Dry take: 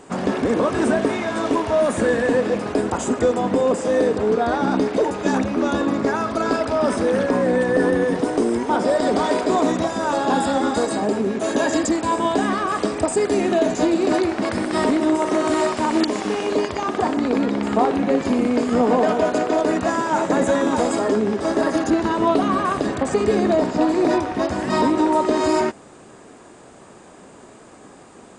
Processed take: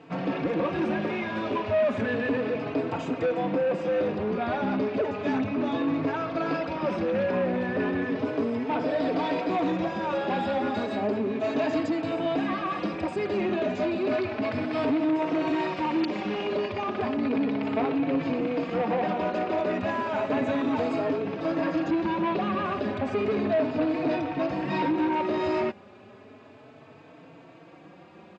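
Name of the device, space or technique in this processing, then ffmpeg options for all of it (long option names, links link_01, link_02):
barber-pole flanger into a guitar amplifier: -filter_complex "[0:a]asplit=2[link_01][link_02];[link_02]adelay=4,afreqshift=0.33[link_03];[link_01][link_03]amix=inputs=2:normalize=1,asoftclip=type=tanh:threshold=-18.5dB,highpass=100,equalizer=frequency=100:width_type=q:width=4:gain=10,equalizer=frequency=160:width_type=q:width=4:gain=7,equalizer=frequency=290:width_type=q:width=4:gain=3,equalizer=frequency=610:width_type=q:width=4:gain=4,equalizer=frequency=2500:width_type=q:width=4:gain=8,lowpass=frequency=4400:width=0.5412,lowpass=frequency=4400:width=1.3066,volume=-4dB"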